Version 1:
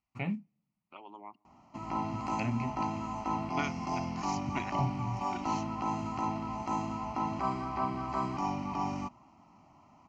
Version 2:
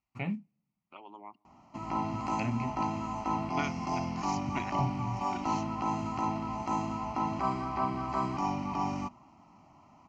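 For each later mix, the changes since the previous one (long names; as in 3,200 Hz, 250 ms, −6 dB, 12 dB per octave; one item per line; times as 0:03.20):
background: send +9.5 dB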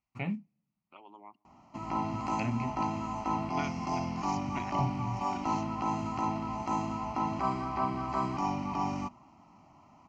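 second voice −3.5 dB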